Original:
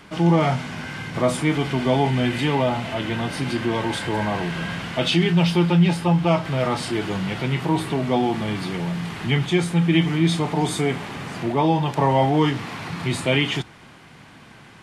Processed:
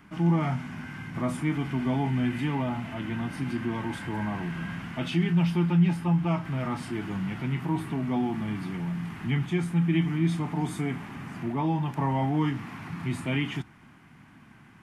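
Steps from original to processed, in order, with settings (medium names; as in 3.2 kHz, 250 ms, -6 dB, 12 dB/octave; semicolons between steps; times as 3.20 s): graphic EQ 250/500/4000/8000 Hz +5/-12/-11/-6 dB; trim -6 dB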